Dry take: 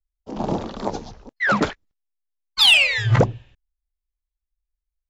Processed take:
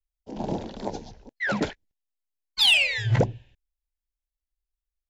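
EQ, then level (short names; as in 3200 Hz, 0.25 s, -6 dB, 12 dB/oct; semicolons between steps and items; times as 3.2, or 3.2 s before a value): bell 1200 Hz -15 dB 0.31 oct; -5.0 dB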